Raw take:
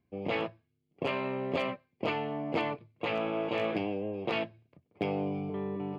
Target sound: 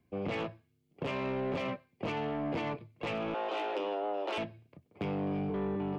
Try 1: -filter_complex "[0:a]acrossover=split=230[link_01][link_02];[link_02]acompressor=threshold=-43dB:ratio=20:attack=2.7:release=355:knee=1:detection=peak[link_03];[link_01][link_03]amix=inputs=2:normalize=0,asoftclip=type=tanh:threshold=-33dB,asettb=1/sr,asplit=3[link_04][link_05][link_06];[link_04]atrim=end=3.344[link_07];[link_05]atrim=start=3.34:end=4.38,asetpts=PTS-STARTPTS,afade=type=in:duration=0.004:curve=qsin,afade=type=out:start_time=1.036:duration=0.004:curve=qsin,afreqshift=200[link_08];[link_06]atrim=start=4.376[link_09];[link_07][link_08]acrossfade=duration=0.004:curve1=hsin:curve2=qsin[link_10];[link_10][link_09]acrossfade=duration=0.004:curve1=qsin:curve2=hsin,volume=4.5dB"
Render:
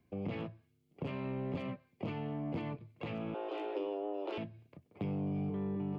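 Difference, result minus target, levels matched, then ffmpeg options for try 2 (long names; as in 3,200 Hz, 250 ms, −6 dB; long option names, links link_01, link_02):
downward compressor: peak gain reduction +11 dB
-filter_complex "[0:a]acrossover=split=230[link_01][link_02];[link_02]acompressor=threshold=-31.5dB:ratio=20:attack=2.7:release=355:knee=1:detection=peak[link_03];[link_01][link_03]amix=inputs=2:normalize=0,asoftclip=type=tanh:threshold=-33dB,asettb=1/sr,asplit=3[link_04][link_05][link_06];[link_04]atrim=end=3.344[link_07];[link_05]atrim=start=3.34:end=4.38,asetpts=PTS-STARTPTS,afade=type=in:duration=0.004:curve=qsin,afade=type=out:start_time=1.036:duration=0.004:curve=qsin,afreqshift=200[link_08];[link_06]atrim=start=4.376[link_09];[link_07][link_08]acrossfade=duration=0.004:curve1=hsin:curve2=qsin[link_10];[link_10][link_09]acrossfade=duration=0.004:curve1=qsin:curve2=hsin,volume=4.5dB"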